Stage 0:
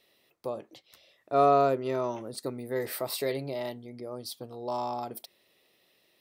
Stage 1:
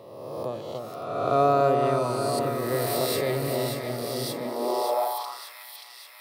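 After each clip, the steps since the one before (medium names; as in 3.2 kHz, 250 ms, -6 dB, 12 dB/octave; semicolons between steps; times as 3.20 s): reverse spectral sustain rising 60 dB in 1.50 s; echo whose repeats swap between lows and highs 290 ms, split 1.1 kHz, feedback 78%, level -3.5 dB; high-pass sweep 110 Hz -> 2 kHz, 4.18–5.55 s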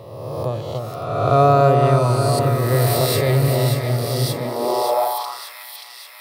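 resonant low shelf 160 Hz +9.5 dB, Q 1.5; trim +7 dB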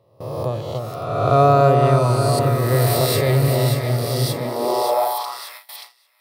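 gate with hold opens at -25 dBFS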